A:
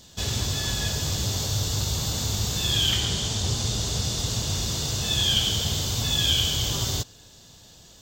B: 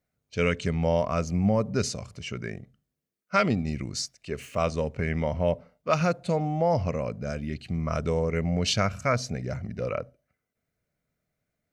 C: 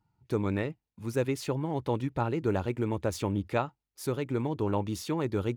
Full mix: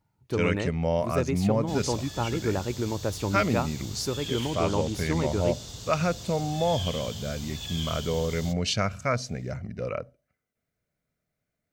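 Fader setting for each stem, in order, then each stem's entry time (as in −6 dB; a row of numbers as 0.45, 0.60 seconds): −13.5, −1.5, +0.5 decibels; 1.50, 0.00, 0.00 seconds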